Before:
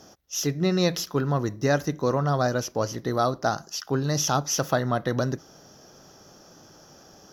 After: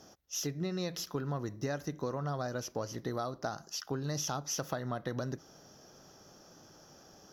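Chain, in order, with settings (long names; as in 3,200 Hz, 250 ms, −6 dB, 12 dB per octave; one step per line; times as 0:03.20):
downward compressor, threshold −26 dBFS, peak gain reduction 9 dB
level −6 dB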